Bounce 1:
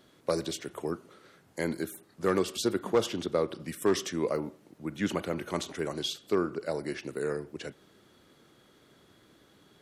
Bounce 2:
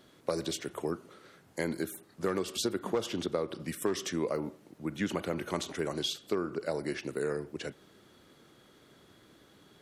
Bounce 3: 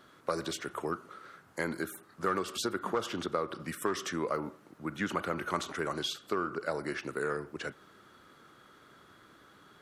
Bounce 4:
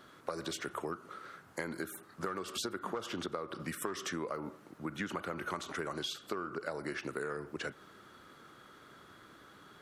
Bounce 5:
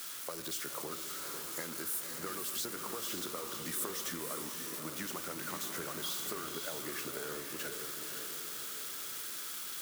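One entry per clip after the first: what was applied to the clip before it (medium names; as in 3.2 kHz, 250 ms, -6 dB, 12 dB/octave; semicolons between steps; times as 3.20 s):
compression 6:1, threshold -28 dBFS, peak gain reduction 8.5 dB; trim +1 dB
peaking EQ 1.3 kHz +12 dB 0.9 oct; in parallel at -12 dB: saturation -29.5 dBFS, distortion -8 dB; on the sum: trim -4 dB
compression 6:1, threshold -36 dBFS, peak gain reduction 10.5 dB; trim +1.5 dB
zero-crossing glitches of -27 dBFS; echo that smears into a reverb 545 ms, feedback 53%, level -5 dB; trim -5.5 dB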